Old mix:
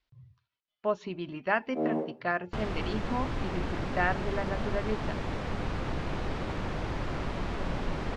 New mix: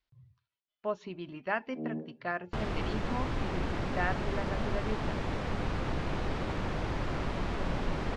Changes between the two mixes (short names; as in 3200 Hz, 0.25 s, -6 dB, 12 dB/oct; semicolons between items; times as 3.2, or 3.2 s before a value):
speech -4.5 dB; first sound: add band-pass 180 Hz, Q 2